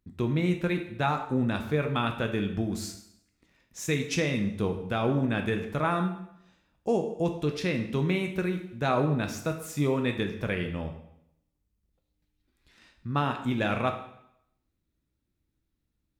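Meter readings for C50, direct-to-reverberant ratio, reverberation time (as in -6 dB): 8.5 dB, 4.5 dB, 0.75 s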